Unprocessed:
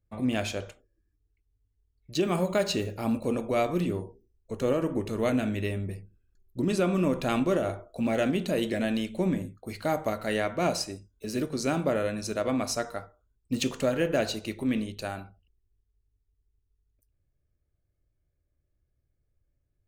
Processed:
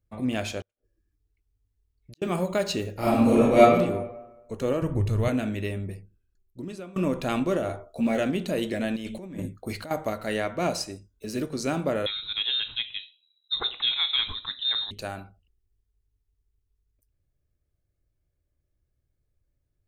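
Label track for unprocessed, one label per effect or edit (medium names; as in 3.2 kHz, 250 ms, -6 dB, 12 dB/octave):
0.610000	2.220000	inverted gate shuts at -34 dBFS, range -41 dB
2.940000	3.600000	reverb throw, RT60 1.1 s, DRR -10 dB
4.820000	5.280000	resonant low shelf 160 Hz +13 dB, Q 1.5
5.870000	6.960000	fade out linear, to -22 dB
7.690000	8.190000	doubling 13 ms -4 dB
8.960000	9.910000	compressor with a negative ratio -35 dBFS
12.060000	14.910000	frequency inversion carrier 3.9 kHz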